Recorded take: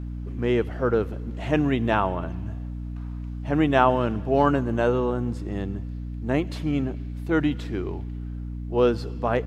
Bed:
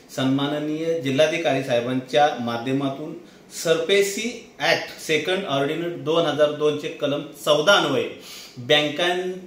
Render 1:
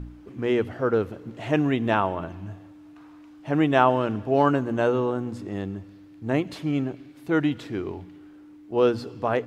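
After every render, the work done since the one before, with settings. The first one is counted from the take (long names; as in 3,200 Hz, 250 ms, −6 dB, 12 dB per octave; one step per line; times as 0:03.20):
hum removal 60 Hz, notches 4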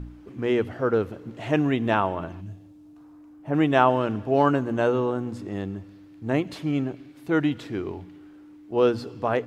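0:02.40–0:03.53: parametric band 940 Hz → 4,600 Hz −13.5 dB 2.4 octaves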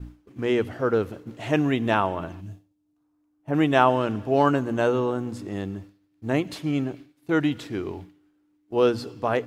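downward expander −36 dBFS
high-shelf EQ 4,300 Hz +7 dB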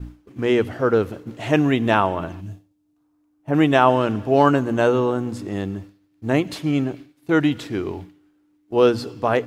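level +4.5 dB
brickwall limiter −2 dBFS, peak gain reduction 3 dB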